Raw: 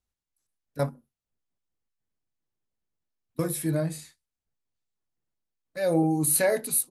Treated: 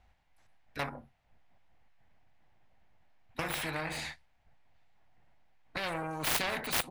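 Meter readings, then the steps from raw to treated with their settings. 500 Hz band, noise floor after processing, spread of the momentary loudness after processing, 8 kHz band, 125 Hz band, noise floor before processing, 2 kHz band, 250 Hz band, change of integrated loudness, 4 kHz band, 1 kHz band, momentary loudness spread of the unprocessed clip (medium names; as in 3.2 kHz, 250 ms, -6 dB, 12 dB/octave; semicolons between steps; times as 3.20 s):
-13.0 dB, -70 dBFS, 15 LU, -12.0 dB, -13.0 dB, under -85 dBFS, +1.5 dB, -14.5 dB, -8.5 dB, +6.0 dB, -1.0 dB, 18 LU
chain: self-modulated delay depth 0.13 ms; FFT filter 100 Hz 0 dB, 420 Hz -8 dB, 760 Hz +8 dB, 1.2 kHz -3 dB, 2 kHz +3 dB, 9.5 kHz -24 dB; in parallel at -0.5 dB: compression, threshold -39 dBFS, peak gain reduction 19 dB; on the sum: dynamic bell 5.2 kHz, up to -6 dB, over -51 dBFS, Q 1.1; spectrum-flattening compressor 4:1; trim -3.5 dB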